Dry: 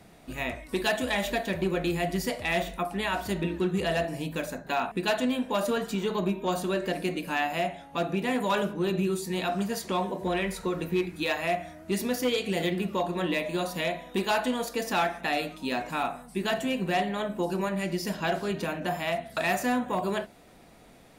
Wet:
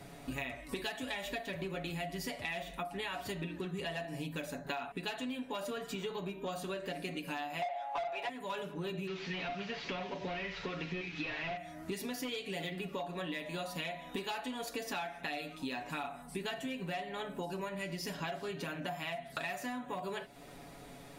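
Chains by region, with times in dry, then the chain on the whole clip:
0:07.62–0:08.29: high-pass with resonance 710 Hz, resonance Q 5 + mid-hump overdrive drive 22 dB, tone 2,500 Hz, clips at −9 dBFS
0:09.07–0:11.57: linear delta modulator 32 kbit/s, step −45 dBFS + parametric band 2,500 Hz +9.5 dB 1.3 octaves
whole clip: comb filter 7.1 ms, depth 59%; dynamic equaliser 2,800 Hz, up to +4 dB, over −42 dBFS, Q 0.89; downward compressor 10 to 1, threshold −38 dBFS; level +1.5 dB

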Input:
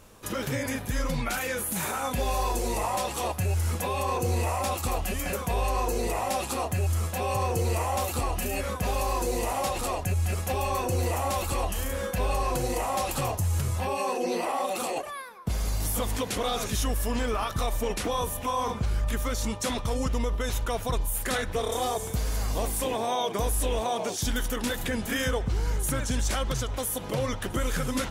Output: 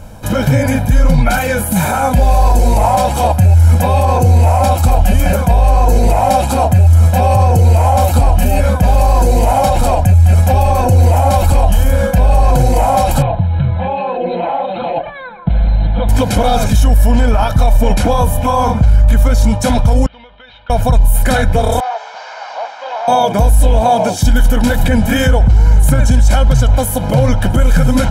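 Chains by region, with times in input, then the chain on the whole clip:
0:13.22–0:16.09: linear-phase brick-wall low-pass 4,300 Hz + downward compressor 1.5 to 1, threshold −41 dBFS + comb filter 5.9 ms, depth 48%
0:20.06–0:20.70: Butterworth low-pass 3,700 Hz 48 dB per octave + first difference + downward compressor, threshold −47 dBFS
0:21.80–0:23.08: linear delta modulator 32 kbit/s, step −46.5 dBFS + high-pass filter 760 Hz 24 dB per octave
whole clip: tilt shelving filter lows +6 dB; comb filter 1.3 ms, depth 72%; boost into a limiter +14.5 dB; level −1 dB

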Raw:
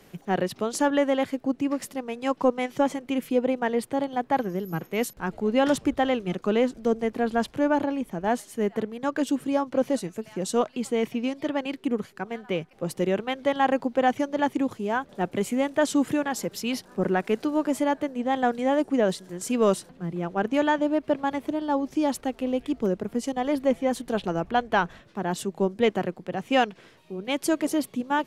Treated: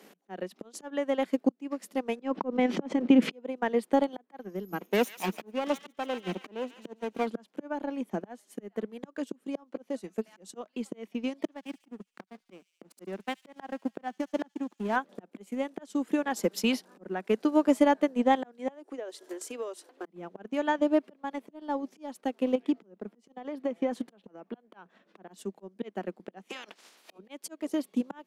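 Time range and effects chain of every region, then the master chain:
0:02.20–0:03.32: low-pass filter 4,400 Hz + low-shelf EQ 390 Hz +11.5 dB + envelope flattener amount 70%
0:04.80–0:07.27: lower of the sound and its delayed copy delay 0.31 ms + delay with a high-pass on its return 142 ms, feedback 46%, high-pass 1,500 Hz, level −5 dB
0:11.43–0:14.96: parametric band 490 Hz −7 dB 0.31 octaves + slack as between gear wheels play −30 dBFS + delay with a high-pass on its return 73 ms, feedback 64%, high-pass 5,300 Hz, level −4.5 dB
0:18.68–0:20.06: Butterworth high-pass 290 Hz 48 dB per octave + downward compressor 4 to 1, threshold −38 dBFS
0:22.55–0:25.28: high-shelf EQ 5,600 Hz −11.5 dB + downward compressor 5 to 1, threshold −25 dBFS
0:26.48–0:27.17: ceiling on every frequency bin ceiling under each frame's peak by 25 dB + downward compressor 10 to 1, threshold −30 dBFS + high-pass filter 220 Hz
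whole clip: volume swells 737 ms; elliptic high-pass filter 190 Hz; transient designer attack +7 dB, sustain −6 dB

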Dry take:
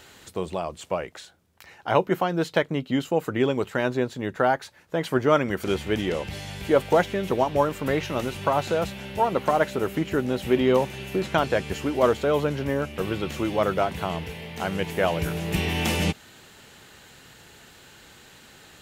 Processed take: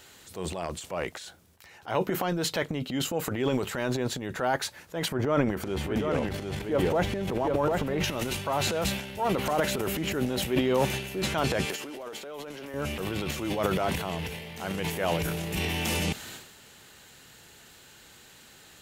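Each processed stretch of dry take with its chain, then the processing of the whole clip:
0:05.08–0:08.04: high-shelf EQ 2,100 Hz −11.5 dB + single-tap delay 753 ms −5 dB
0:11.65–0:12.74: high-pass filter 310 Hz + downward compressor 12 to 1, threshold −31 dBFS
whole clip: high-shelf EQ 4,500 Hz +6.5 dB; transient designer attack −5 dB, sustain +11 dB; level −5 dB

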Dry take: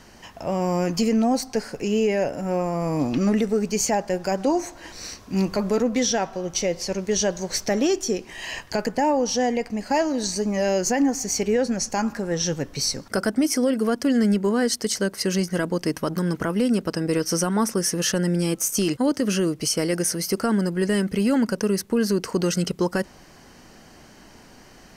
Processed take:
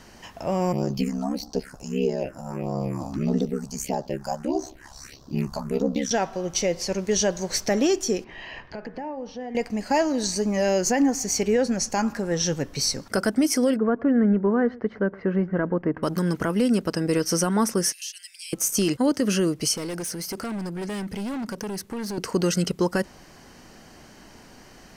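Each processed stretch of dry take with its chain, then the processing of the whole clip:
0:00.72–0:06.11: all-pass phaser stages 4, 1.6 Hz, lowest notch 350–2,300 Hz + ring modulation 34 Hz + double-tracking delay 15 ms −13.5 dB
0:08.24–0:09.55: downward compressor 4 to 1, threshold −31 dBFS + high-frequency loss of the air 290 metres + hum removal 93.91 Hz, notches 27
0:13.76–0:16.03: low-pass filter 1,700 Hz 24 dB per octave + single-tap delay 114 ms −23 dB
0:17.92–0:18.53: elliptic high-pass filter 2,400 Hz, stop band 80 dB + downward compressor 2.5 to 1, threshold −35 dBFS
0:19.76–0:22.18: hard clipping −22.5 dBFS + downward compressor, threshold −29 dBFS
whole clip: no processing

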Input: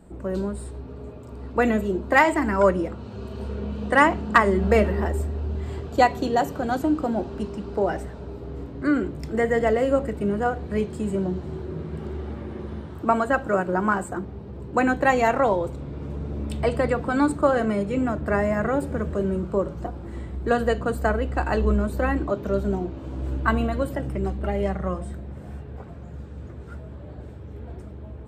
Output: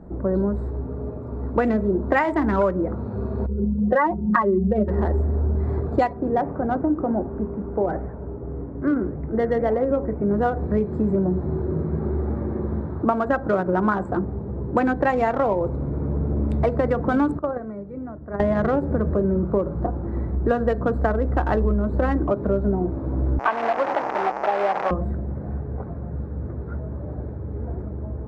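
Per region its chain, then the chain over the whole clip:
0:03.46–0:04.88: expanding power law on the bin magnitudes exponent 1.9 + comb filter 5.5 ms, depth 72%
0:06.13–0:10.31: low-pass filter 2,600 Hz 24 dB per octave + flanger 1.9 Hz, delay 2.9 ms, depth 9.9 ms, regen −88%
0:17.39–0:18.40: noise gate −19 dBFS, range −17 dB + high-shelf EQ 8,500 Hz −11.5 dB + downward compressor 20 to 1, threshold −25 dBFS
0:23.39–0:24.91: linear delta modulator 16 kbit/s, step −20 dBFS + high-pass filter 600 Hz + parametric band 800 Hz +8.5 dB 0.6 octaves
whole clip: adaptive Wiener filter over 15 samples; low-pass filter 1,700 Hz 6 dB per octave; downward compressor 6 to 1, threshold −25 dBFS; level +8 dB

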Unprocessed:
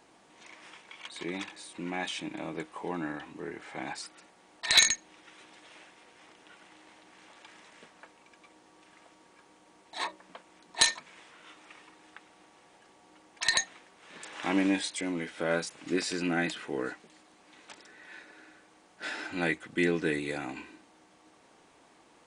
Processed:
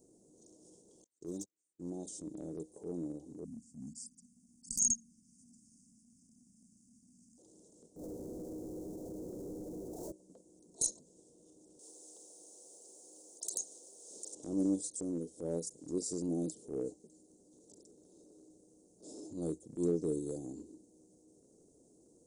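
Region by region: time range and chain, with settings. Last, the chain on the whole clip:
0:01.04–0:01.81: noise gate −39 dBFS, range −40 dB + parametric band 6,600 Hz +8 dB 0.92 octaves + hard clipping −28 dBFS
0:03.44–0:07.38: linear-phase brick-wall band-stop 280–4,500 Hz + parametric band 230 Hz +12.5 dB 0.3 octaves
0:07.96–0:10.12: Butterworth low-pass 950 Hz + power curve on the samples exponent 0.35
0:11.79–0:14.35: high-pass filter 890 Hz + every bin compressed towards the loudest bin 2 to 1
whole clip: Chebyshev band-stop filter 460–6,800 Hz, order 3; dynamic equaliser 240 Hz, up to −4 dB, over −43 dBFS, Q 0.73; transient designer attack −8 dB, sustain −2 dB; level +1.5 dB

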